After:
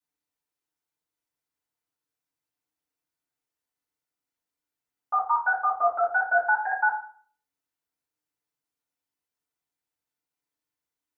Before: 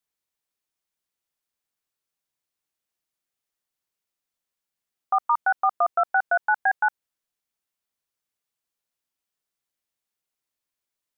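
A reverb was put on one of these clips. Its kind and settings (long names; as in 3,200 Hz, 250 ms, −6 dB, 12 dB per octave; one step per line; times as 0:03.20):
feedback delay network reverb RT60 0.47 s, low-frequency decay 1.1×, high-frequency decay 0.45×, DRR −8.5 dB
level −10.5 dB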